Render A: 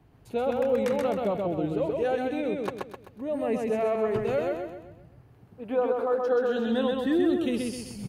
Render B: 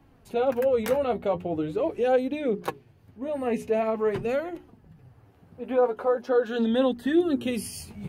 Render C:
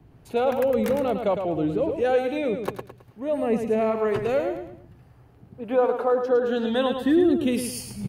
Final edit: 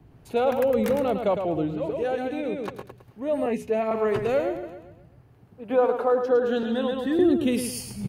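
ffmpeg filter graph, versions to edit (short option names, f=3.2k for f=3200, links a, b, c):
-filter_complex "[0:a]asplit=3[a][b][c];[2:a]asplit=5[d][e][f][g][h];[d]atrim=end=1.84[i];[a]atrim=start=1.6:end=2.89[j];[e]atrim=start=2.65:end=3.462[k];[1:a]atrim=start=3.458:end=3.912[l];[f]atrim=start=3.908:end=4.632[m];[b]atrim=start=4.628:end=5.702[n];[g]atrim=start=5.698:end=6.632[o];[c]atrim=start=6.628:end=7.192[p];[h]atrim=start=7.188[q];[i][j]acrossfade=d=0.24:c1=tri:c2=tri[r];[r][k]acrossfade=d=0.24:c1=tri:c2=tri[s];[s][l]acrossfade=d=0.004:c1=hsin:c2=hsin[t];[t][m]acrossfade=d=0.004:c1=hsin:c2=hsin[u];[u][n]acrossfade=d=0.004:c1=hsin:c2=hsin[v];[v][o]acrossfade=d=0.004:c1=hsin:c2=hsin[w];[w][p]acrossfade=d=0.004:c1=hsin:c2=hsin[x];[x][q]acrossfade=d=0.004:c1=hsin:c2=hsin"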